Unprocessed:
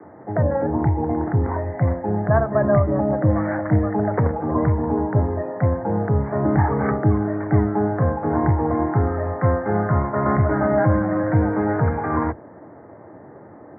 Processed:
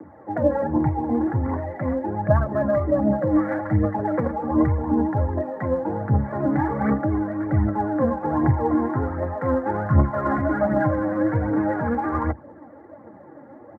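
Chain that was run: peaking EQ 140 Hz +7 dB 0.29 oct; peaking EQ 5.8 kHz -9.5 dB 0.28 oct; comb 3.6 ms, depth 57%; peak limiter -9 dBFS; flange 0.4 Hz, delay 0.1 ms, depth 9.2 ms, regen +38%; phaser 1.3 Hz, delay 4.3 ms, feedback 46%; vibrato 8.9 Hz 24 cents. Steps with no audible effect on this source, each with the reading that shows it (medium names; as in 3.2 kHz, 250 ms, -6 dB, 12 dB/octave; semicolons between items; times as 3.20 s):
peaking EQ 5.8 kHz: input has nothing above 1.3 kHz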